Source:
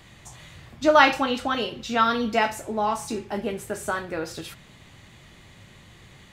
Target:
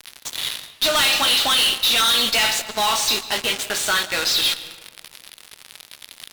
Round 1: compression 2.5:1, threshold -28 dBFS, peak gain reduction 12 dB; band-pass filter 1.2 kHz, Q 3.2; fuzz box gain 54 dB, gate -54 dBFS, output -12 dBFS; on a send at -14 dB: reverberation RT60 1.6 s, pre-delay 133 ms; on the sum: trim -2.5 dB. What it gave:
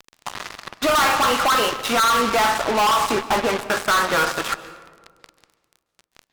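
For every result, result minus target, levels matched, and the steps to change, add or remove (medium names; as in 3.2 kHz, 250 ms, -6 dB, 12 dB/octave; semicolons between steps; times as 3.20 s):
1 kHz band +8.5 dB; compression: peak gain reduction +4 dB
change: band-pass filter 3.8 kHz, Q 3.2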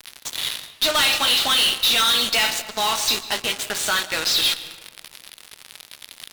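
compression: peak gain reduction +4 dB
change: compression 2.5:1, threshold -21.5 dBFS, peak gain reduction 8 dB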